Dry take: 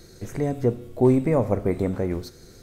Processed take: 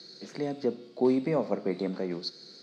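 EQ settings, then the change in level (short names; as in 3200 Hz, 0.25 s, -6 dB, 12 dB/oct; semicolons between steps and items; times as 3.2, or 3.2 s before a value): steep high-pass 160 Hz 48 dB/oct; synth low-pass 4500 Hz, resonance Q 7; -6.0 dB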